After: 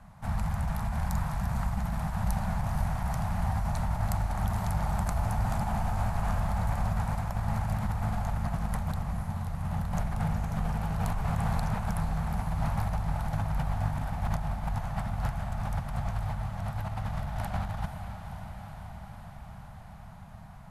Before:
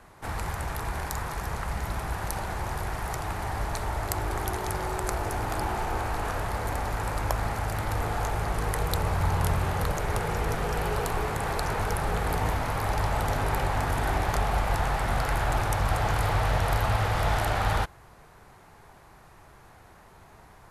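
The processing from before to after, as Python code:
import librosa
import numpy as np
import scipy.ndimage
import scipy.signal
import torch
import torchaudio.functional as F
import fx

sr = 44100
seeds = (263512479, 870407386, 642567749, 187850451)

y = fx.curve_eq(x, sr, hz=(110.0, 200.0, 370.0, 670.0, 1900.0), db=(0, 5, -27, -6, -12))
y = fx.over_compress(y, sr, threshold_db=-32.0, ratio=-1.0)
y = fx.echo_diffused(y, sr, ms=500, feedback_pct=74, wet_db=-8.5)
y = y * librosa.db_to_amplitude(1.5)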